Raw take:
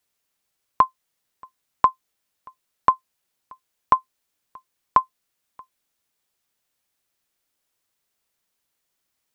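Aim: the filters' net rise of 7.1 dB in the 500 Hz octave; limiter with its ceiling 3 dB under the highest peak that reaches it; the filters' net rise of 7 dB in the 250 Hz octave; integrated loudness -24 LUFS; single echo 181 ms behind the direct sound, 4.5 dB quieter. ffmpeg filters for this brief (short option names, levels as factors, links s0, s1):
-af "equalizer=f=250:t=o:g=6.5,equalizer=f=500:t=o:g=7.5,alimiter=limit=0.668:level=0:latency=1,aecho=1:1:181:0.596,volume=1.06"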